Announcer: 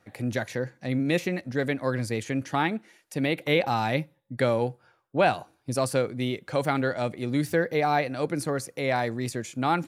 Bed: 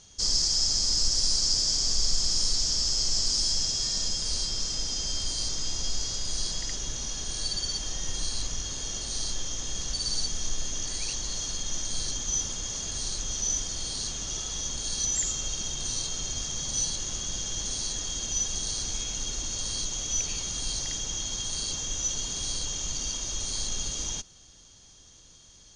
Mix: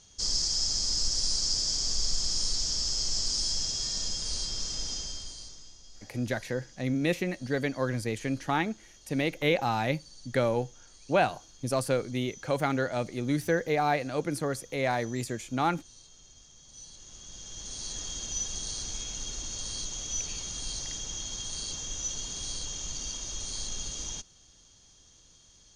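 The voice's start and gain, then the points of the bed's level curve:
5.95 s, −2.5 dB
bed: 0:04.93 −3.5 dB
0:05.80 −22.5 dB
0:16.62 −22.5 dB
0:17.99 −4.5 dB

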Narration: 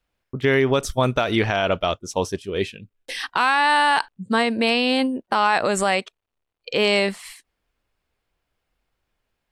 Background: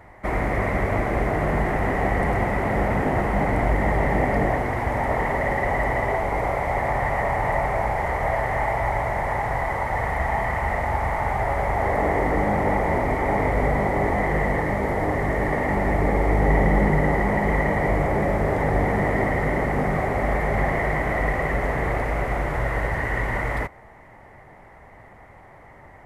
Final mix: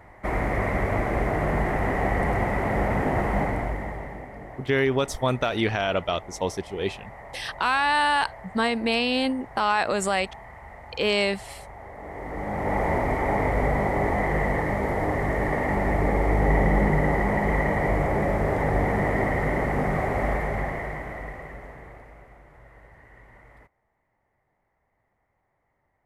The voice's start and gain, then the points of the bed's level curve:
4.25 s, −4.0 dB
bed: 0:03.38 −2 dB
0:04.30 −19.5 dB
0:11.95 −19.5 dB
0:12.81 −2 dB
0:20.26 −2 dB
0:22.41 −26.5 dB

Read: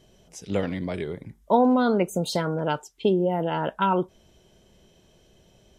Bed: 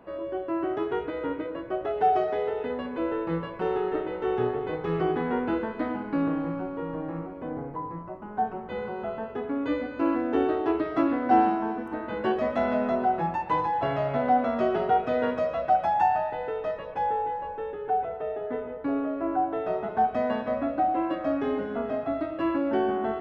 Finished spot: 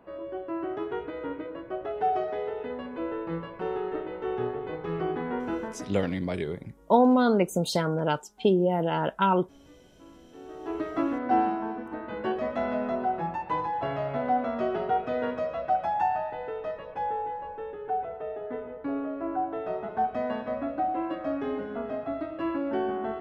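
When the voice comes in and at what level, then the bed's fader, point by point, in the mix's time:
5.40 s, −0.5 dB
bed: 0:05.73 −4 dB
0:06.08 −27 dB
0:10.30 −27 dB
0:10.81 −3.5 dB

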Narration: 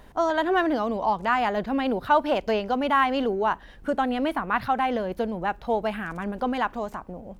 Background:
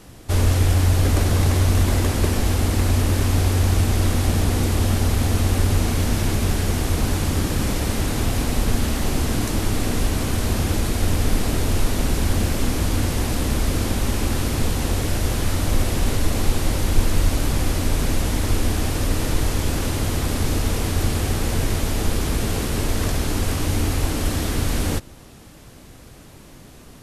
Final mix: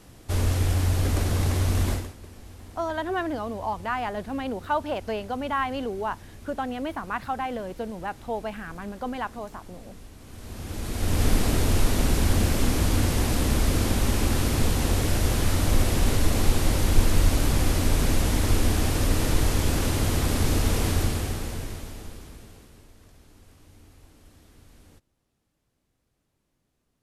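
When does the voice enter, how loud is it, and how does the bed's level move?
2.60 s, −5.5 dB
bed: 0:01.92 −6 dB
0:02.16 −25 dB
0:10.18 −25 dB
0:11.23 −1.5 dB
0:20.91 −1.5 dB
0:22.94 −31.5 dB

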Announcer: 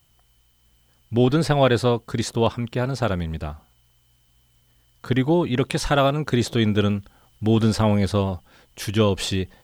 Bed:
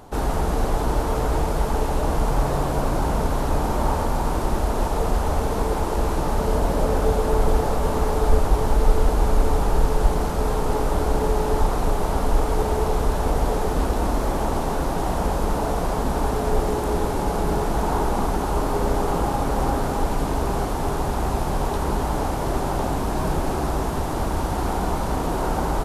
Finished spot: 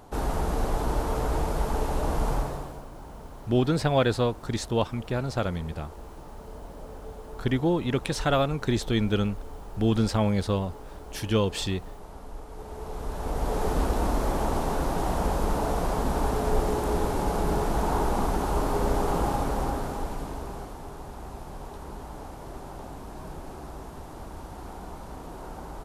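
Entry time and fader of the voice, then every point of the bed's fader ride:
2.35 s, −5.0 dB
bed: 0:02.33 −5 dB
0:02.87 −21 dB
0:12.48 −21 dB
0:13.66 −3.5 dB
0:19.31 −3.5 dB
0:20.88 −16.5 dB

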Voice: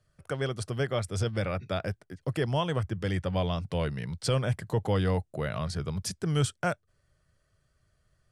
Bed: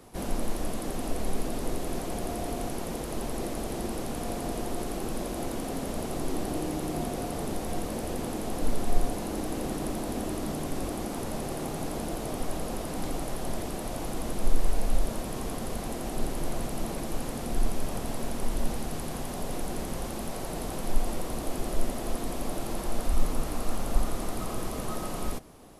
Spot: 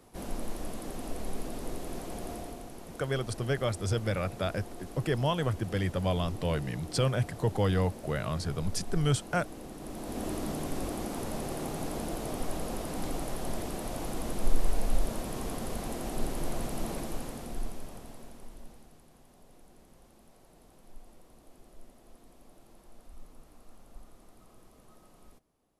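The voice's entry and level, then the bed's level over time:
2.70 s, −0.5 dB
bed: 0:02.34 −6 dB
0:02.65 −12 dB
0:09.75 −12 dB
0:10.27 −2 dB
0:16.96 −2 dB
0:19.06 −24.5 dB

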